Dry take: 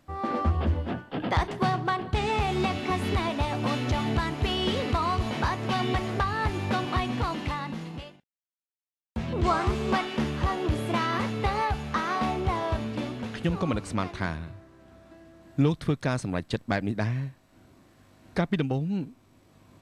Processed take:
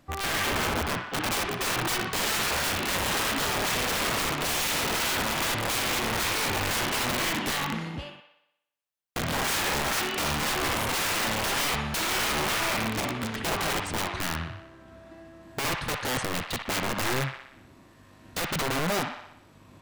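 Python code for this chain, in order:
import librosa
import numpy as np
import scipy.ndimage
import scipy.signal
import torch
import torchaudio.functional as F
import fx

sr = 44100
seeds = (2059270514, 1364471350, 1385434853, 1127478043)

y = (np.mod(10.0 ** (26.0 / 20.0) * x + 1.0, 2.0) - 1.0) / 10.0 ** (26.0 / 20.0)
y = fx.echo_wet_bandpass(y, sr, ms=61, feedback_pct=59, hz=1600.0, wet_db=-3)
y = y * librosa.db_to_amplitude(2.5)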